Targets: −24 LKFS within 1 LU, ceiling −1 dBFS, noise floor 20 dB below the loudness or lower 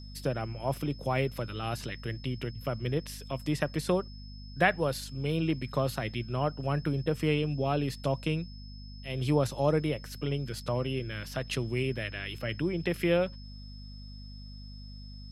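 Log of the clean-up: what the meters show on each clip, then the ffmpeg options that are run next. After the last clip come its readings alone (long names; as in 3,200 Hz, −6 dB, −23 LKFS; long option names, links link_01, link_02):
mains hum 50 Hz; hum harmonics up to 250 Hz; level of the hum −43 dBFS; interfering tone 5,200 Hz; level of the tone −52 dBFS; integrated loudness −31.5 LKFS; sample peak −10.0 dBFS; target loudness −24.0 LKFS
→ -af "bandreject=frequency=50:width_type=h:width=4,bandreject=frequency=100:width_type=h:width=4,bandreject=frequency=150:width_type=h:width=4,bandreject=frequency=200:width_type=h:width=4,bandreject=frequency=250:width_type=h:width=4"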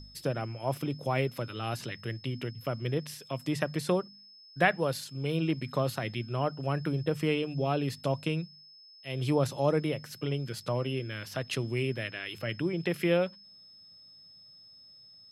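mains hum none found; interfering tone 5,200 Hz; level of the tone −52 dBFS
→ -af "bandreject=frequency=5200:width=30"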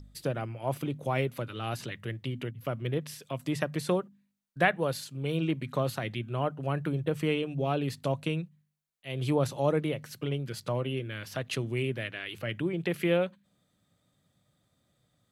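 interfering tone none found; integrated loudness −32.0 LKFS; sample peak −10.0 dBFS; target loudness −24.0 LKFS
→ -af "volume=8dB"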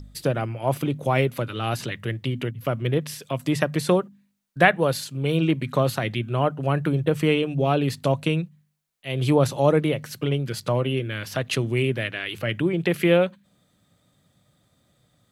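integrated loudness −24.0 LKFS; sample peak −2.0 dBFS; background noise floor −67 dBFS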